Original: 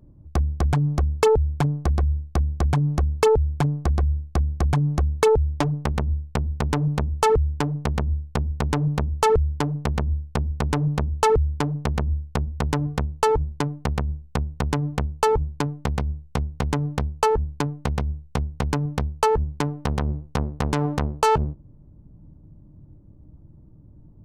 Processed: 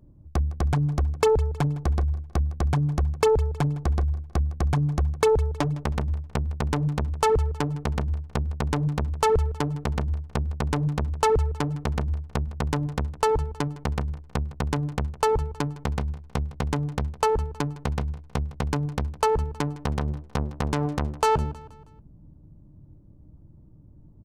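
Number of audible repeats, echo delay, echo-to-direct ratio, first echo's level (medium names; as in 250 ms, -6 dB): 3, 159 ms, -18.0 dB, -19.0 dB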